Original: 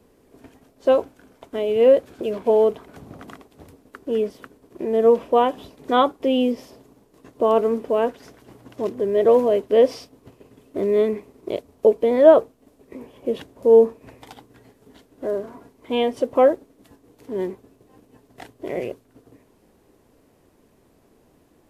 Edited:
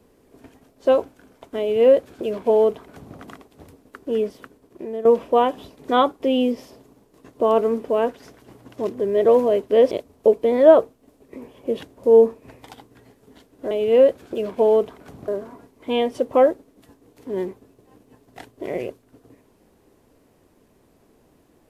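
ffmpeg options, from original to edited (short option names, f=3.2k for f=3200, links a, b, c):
-filter_complex "[0:a]asplit=5[a][b][c][d][e];[a]atrim=end=5.05,asetpts=PTS-STARTPTS,afade=t=out:st=4.25:d=0.8:c=qsin:silence=0.223872[f];[b]atrim=start=5.05:end=9.912,asetpts=PTS-STARTPTS,afade=t=in:d=0.004:c=hsin:silence=0.223872[g];[c]atrim=start=11.498:end=15.302[h];[d]atrim=start=1.588:end=3.162[i];[e]atrim=start=15.298[j];[f][g]concat=n=2:v=0:a=1[k];[k][h]acrossfade=d=0.004:c1=hsin:c2=hsin[l];[l][i]acrossfade=d=0.004:c1=hsin:c2=hsin[m];[m][j]acrossfade=d=0.004:c1=hsin:c2=hsin"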